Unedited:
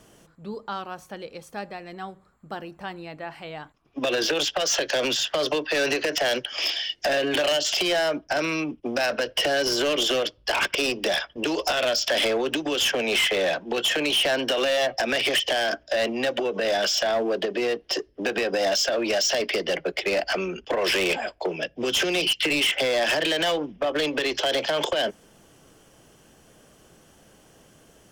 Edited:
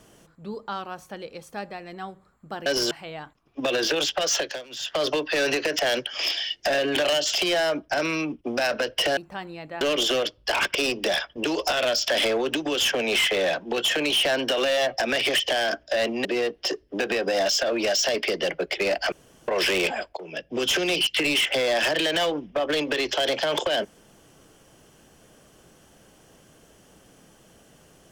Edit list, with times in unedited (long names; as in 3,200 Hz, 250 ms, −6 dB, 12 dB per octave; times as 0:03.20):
0:02.66–0:03.30: swap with 0:09.56–0:09.81
0:04.74–0:05.38: duck −23.5 dB, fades 0.30 s
0:16.25–0:17.51: remove
0:20.38–0:20.74: fill with room tone
0:21.43–0:21.77: fade in linear, from −19 dB